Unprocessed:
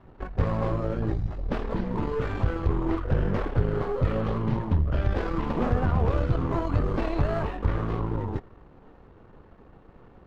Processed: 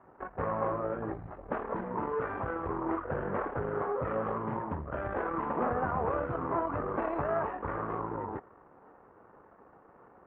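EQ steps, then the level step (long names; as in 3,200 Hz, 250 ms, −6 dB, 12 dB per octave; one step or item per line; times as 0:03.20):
resonant band-pass 1,300 Hz, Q 0.77
low-pass filter 1,700 Hz 12 dB per octave
high-frequency loss of the air 360 metres
+4.5 dB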